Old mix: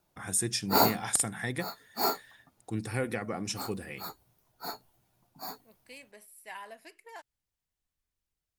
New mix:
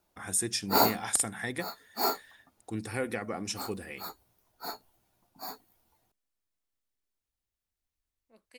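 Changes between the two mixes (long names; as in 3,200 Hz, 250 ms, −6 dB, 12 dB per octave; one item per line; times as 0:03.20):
second voice: entry +2.65 s
master: add parametric band 140 Hz −11.5 dB 0.45 octaves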